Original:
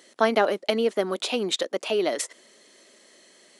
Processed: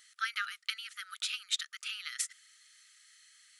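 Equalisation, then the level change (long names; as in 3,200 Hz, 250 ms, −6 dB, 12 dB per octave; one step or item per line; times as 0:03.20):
linear-phase brick-wall high-pass 1,200 Hz
high-shelf EQ 8,400 Hz +5 dB
−6.0 dB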